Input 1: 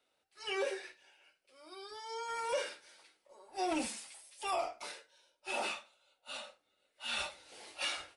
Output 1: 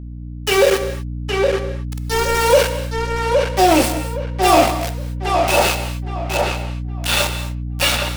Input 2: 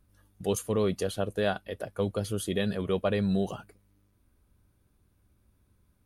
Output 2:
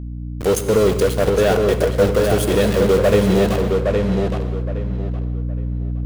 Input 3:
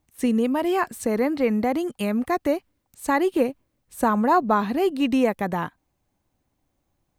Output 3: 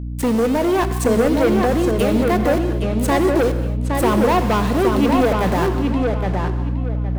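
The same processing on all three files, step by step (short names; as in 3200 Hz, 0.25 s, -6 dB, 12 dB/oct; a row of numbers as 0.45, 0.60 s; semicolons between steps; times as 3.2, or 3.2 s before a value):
bell 500 Hz +7 dB 0.78 oct; in parallel at 0 dB: compressor, threshold -28 dBFS; on the sum: sample gate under -29.5 dBFS; hum 60 Hz, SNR 12 dB; soft clip -18 dBFS; on a send: darkening echo 0.816 s, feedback 27%, low-pass 3300 Hz, level -3.5 dB; on the sum: non-linear reverb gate 0.27 s flat, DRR 9 dB; match loudness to -18 LUFS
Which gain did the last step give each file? +14.5, +8.0, +4.0 dB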